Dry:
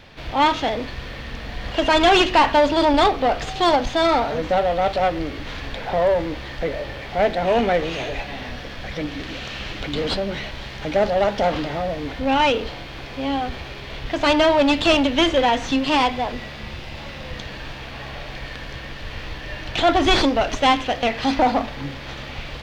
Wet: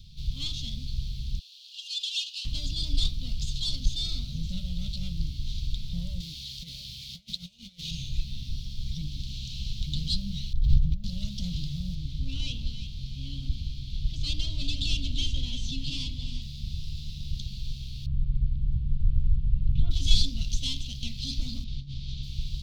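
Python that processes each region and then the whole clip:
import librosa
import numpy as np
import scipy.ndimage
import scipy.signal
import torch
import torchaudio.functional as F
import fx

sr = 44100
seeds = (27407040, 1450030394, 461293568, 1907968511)

y = fx.chain(x, sr, fx.steep_highpass(hz=2500.0, slope=96),
    fx.high_shelf(hz=5100.0, db=-6.5), at=(1.39, 2.45))
y = fx.chain(y, sr, fx.highpass(hz=290.0, slope=6),
    fx.tilt_shelf(db=-4.0, hz=1400.0),
    fx.over_compress(threshold_db=-28.0, ratio=-0.5), at=(6.2, 7.91))
y = fx.chain(y, sr, fx.tilt_eq(slope=-3.5),
    fx.over_compress(threshold_db=-25.0, ratio=-1.0),
    fx.resample_linear(factor=2), at=(10.53, 11.04))
y = fx.chain(y, sr, fx.high_shelf(hz=6200.0, db=-8.5),
    fx.echo_alternate(ms=171, hz=890.0, feedback_pct=58, wet_db=-5.5), at=(11.95, 16.42))
y = fx.chain(y, sr, fx.lowpass_res(hz=1100.0, q=1.8),
    fx.low_shelf(hz=300.0, db=8.0), at=(18.06, 19.91))
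y = fx.chain(y, sr, fx.lowpass(hz=4800.0, slope=12),
    fx.over_compress(threshold_db=-32.0, ratio=-0.5), at=(21.64, 22.23))
y = scipy.signal.sosfilt(scipy.signal.ellip(3, 1.0, 40, [170.0, 3800.0], 'bandstop', fs=sr, output='sos'), y)
y = fx.low_shelf(y, sr, hz=65.0, db=8.5)
y = y * 10.0 ** (-1.5 / 20.0)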